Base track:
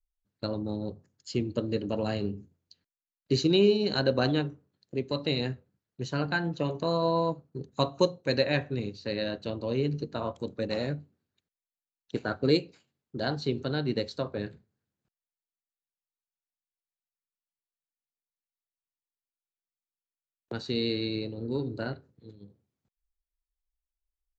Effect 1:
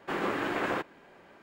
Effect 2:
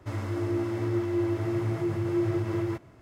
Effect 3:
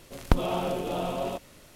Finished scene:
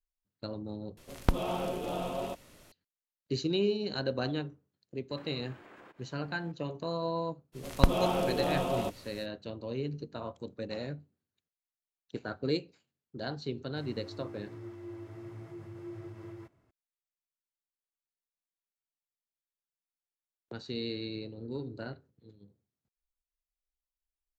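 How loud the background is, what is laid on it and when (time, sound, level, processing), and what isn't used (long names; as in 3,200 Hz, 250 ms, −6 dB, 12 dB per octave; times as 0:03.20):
base track −7 dB
0:00.97: overwrite with 3 −4.5 dB
0:05.10: mix in 1 −5.5 dB + downward compressor 16 to 1, threshold −44 dBFS
0:07.52: mix in 3 −0.5 dB, fades 0.05 s
0:13.70: mix in 2 −17 dB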